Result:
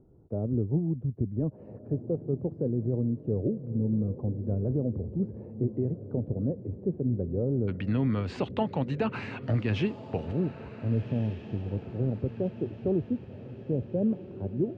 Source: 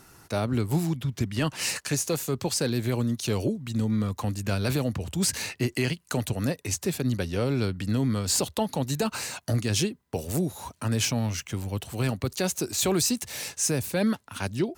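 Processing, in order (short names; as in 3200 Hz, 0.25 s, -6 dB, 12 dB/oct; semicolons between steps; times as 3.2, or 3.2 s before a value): Chebyshev low-pass 500 Hz, order 3, from 7.67 s 2600 Hz, from 10.31 s 530 Hz; diffused feedback echo 1.542 s, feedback 48%, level -13 dB; gain -1 dB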